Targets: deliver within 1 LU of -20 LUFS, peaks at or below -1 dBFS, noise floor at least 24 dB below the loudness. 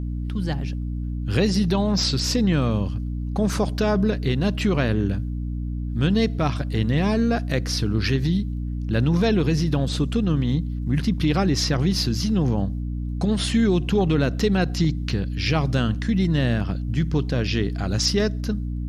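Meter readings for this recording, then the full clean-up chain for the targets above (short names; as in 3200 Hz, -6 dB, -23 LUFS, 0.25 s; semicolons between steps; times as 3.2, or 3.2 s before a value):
hum 60 Hz; harmonics up to 300 Hz; hum level -25 dBFS; loudness -23.0 LUFS; peak -9.0 dBFS; loudness target -20.0 LUFS
-> notches 60/120/180/240/300 Hz; gain +3 dB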